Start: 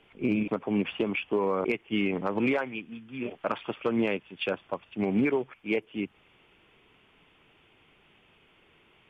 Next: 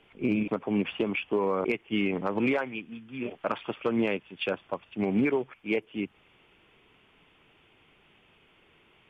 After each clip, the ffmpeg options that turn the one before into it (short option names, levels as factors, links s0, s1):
-af anull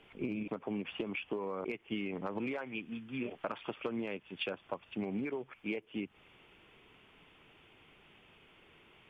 -af "acompressor=threshold=0.02:ratio=10"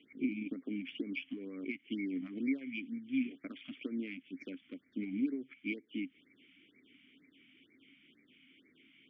-filter_complex "[0:a]aeval=exprs='0.0794*(cos(1*acos(clip(val(0)/0.0794,-1,1)))-cos(1*PI/2))+0.00447*(cos(4*acos(clip(val(0)/0.0794,-1,1)))-cos(4*PI/2))':c=same,asplit=3[s0][s1][s2];[s0]bandpass=f=270:t=q:w=8,volume=1[s3];[s1]bandpass=f=2290:t=q:w=8,volume=0.501[s4];[s2]bandpass=f=3010:t=q:w=8,volume=0.355[s5];[s3][s4][s5]amix=inputs=3:normalize=0,afftfilt=real='re*(1-between(b*sr/1024,410*pow(3400/410,0.5+0.5*sin(2*PI*2.1*pts/sr))/1.41,410*pow(3400/410,0.5+0.5*sin(2*PI*2.1*pts/sr))*1.41))':imag='im*(1-between(b*sr/1024,410*pow(3400/410,0.5+0.5*sin(2*PI*2.1*pts/sr))/1.41,410*pow(3400/410,0.5+0.5*sin(2*PI*2.1*pts/sr))*1.41))':win_size=1024:overlap=0.75,volume=2.99"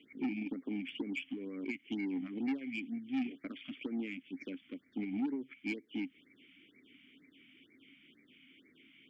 -af "asoftclip=type=tanh:threshold=0.0282,volume=1.26"